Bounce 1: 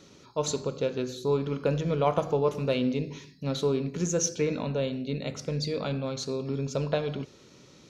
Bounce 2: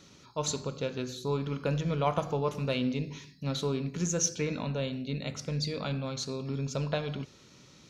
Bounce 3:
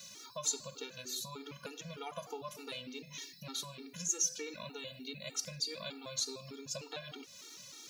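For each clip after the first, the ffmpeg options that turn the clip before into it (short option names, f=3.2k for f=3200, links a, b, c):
-af "equalizer=f=430:t=o:w=1.4:g=-6.5"
-af "acompressor=threshold=-41dB:ratio=3,aemphasis=mode=production:type=riaa,afftfilt=real='re*gt(sin(2*PI*3.3*pts/sr)*(1-2*mod(floor(b*sr/1024/240),2)),0)':imag='im*gt(sin(2*PI*3.3*pts/sr)*(1-2*mod(floor(b*sr/1024/240),2)),0)':win_size=1024:overlap=0.75,volume=3dB"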